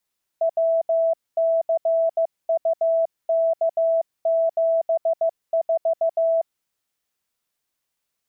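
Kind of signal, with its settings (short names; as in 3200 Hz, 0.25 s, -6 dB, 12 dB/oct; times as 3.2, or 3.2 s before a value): Morse "WCUK74" 15 wpm 658 Hz -16.5 dBFS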